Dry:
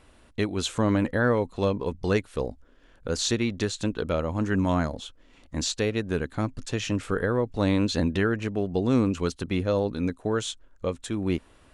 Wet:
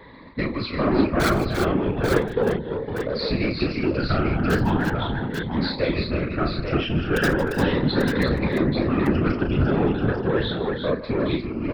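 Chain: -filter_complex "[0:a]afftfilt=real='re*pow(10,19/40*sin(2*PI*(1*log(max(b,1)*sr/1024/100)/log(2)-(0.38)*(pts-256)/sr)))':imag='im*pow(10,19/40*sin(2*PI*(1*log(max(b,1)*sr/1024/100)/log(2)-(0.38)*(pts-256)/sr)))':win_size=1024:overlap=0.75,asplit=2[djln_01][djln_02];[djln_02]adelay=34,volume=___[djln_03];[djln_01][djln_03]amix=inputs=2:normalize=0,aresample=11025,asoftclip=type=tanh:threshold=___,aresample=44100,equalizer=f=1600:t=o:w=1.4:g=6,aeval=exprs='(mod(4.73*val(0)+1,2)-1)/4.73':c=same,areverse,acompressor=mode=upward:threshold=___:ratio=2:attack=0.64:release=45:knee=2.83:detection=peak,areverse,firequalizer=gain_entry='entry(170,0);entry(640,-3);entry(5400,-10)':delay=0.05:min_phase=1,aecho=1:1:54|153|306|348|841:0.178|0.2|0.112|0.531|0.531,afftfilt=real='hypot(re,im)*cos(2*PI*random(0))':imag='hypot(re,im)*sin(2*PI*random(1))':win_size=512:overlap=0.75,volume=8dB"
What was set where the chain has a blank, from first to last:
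-6dB, -18dB, -32dB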